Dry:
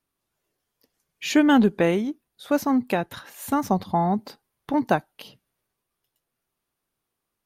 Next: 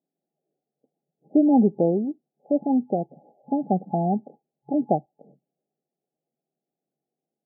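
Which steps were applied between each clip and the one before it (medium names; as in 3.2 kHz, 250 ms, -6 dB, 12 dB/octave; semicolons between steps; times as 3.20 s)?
FFT band-pass 130–850 Hz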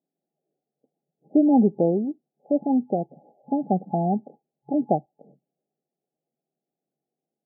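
no audible change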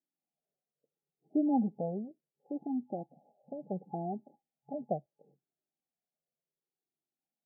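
Shepard-style flanger falling 0.71 Hz; trim -7.5 dB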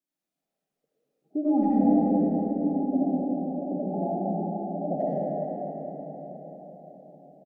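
speakerphone echo 90 ms, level -18 dB; reverberation RT60 5.1 s, pre-delay 40 ms, DRR -9 dB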